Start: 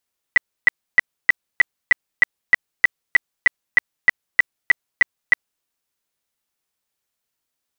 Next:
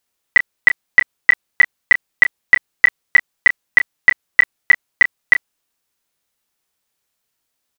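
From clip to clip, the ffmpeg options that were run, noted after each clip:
ffmpeg -i in.wav -filter_complex "[0:a]asplit=2[link_01][link_02];[link_02]adelay=30,volume=-10.5dB[link_03];[link_01][link_03]amix=inputs=2:normalize=0,volume=5dB" out.wav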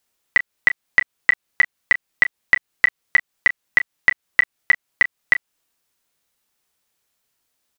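ffmpeg -i in.wav -filter_complex "[0:a]acrossover=split=1500|3100[link_01][link_02][link_03];[link_01]acompressor=threshold=-29dB:ratio=4[link_04];[link_02]acompressor=threshold=-17dB:ratio=4[link_05];[link_03]acompressor=threshold=-36dB:ratio=4[link_06];[link_04][link_05][link_06]amix=inputs=3:normalize=0,volume=1.5dB" out.wav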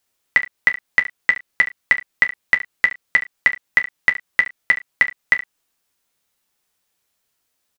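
ffmpeg -i in.wav -af "aecho=1:1:11|71:0.316|0.178" out.wav

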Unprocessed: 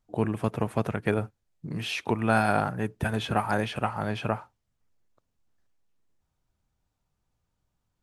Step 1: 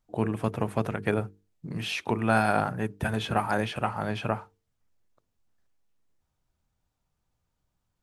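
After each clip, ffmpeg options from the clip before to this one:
ffmpeg -i in.wav -af "bandreject=frequency=50:width_type=h:width=6,bandreject=frequency=100:width_type=h:width=6,bandreject=frequency=150:width_type=h:width=6,bandreject=frequency=200:width_type=h:width=6,bandreject=frequency=250:width_type=h:width=6,bandreject=frequency=300:width_type=h:width=6,bandreject=frequency=350:width_type=h:width=6,bandreject=frequency=400:width_type=h:width=6,bandreject=frequency=450:width_type=h:width=6" out.wav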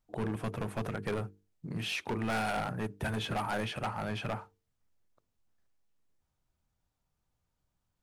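ffmpeg -i in.wav -af "volume=25.5dB,asoftclip=hard,volume=-25.5dB,volume=-3dB" out.wav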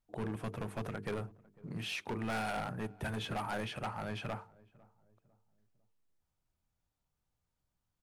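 ffmpeg -i in.wav -filter_complex "[0:a]asplit=2[link_01][link_02];[link_02]adelay=501,lowpass=frequency=850:poles=1,volume=-22dB,asplit=2[link_03][link_04];[link_04]adelay=501,lowpass=frequency=850:poles=1,volume=0.43,asplit=2[link_05][link_06];[link_06]adelay=501,lowpass=frequency=850:poles=1,volume=0.43[link_07];[link_01][link_03][link_05][link_07]amix=inputs=4:normalize=0,volume=-4dB" out.wav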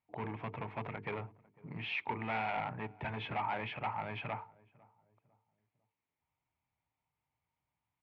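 ffmpeg -i in.wav -af "highpass=100,equalizer=frequency=200:width_type=q:width=4:gain=-7,equalizer=frequency=360:width_type=q:width=4:gain=-4,equalizer=frequency=520:width_type=q:width=4:gain=-4,equalizer=frequency=910:width_type=q:width=4:gain=8,equalizer=frequency=1500:width_type=q:width=4:gain=-5,equalizer=frequency=2200:width_type=q:width=4:gain=9,lowpass=frequency=3100:width=0.5412,lowpass=frequency=3100:width=1.3066" out.wav

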